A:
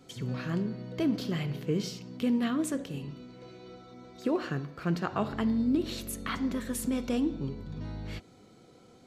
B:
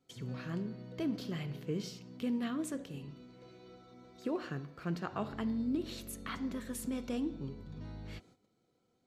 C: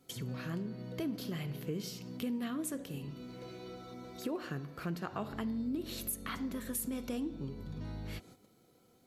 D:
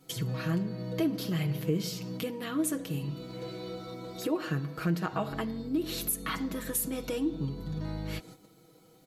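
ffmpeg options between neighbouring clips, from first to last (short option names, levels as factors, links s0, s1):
-af "agate=range=0.224:threshold=0.00224:ratio=16:detection=peak,volume=0.447"
-af "equalizer=f=12000:t=o:w=0.62:g=13.5,acompressor=threshold=0.00224:ratio=2,volume=2.99"
-af "aecho=1:1:6.3:0.74,volume=1.78"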